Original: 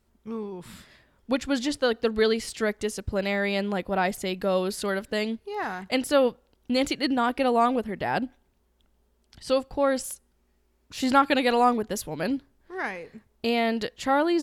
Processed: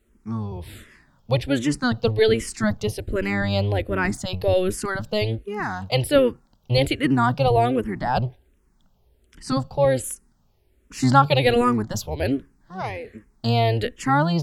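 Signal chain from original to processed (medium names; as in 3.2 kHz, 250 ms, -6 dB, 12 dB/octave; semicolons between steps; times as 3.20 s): octave divider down 1 oct, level +2 dB; barber-pole phaser -1.3 Hz; trim +5.5 dB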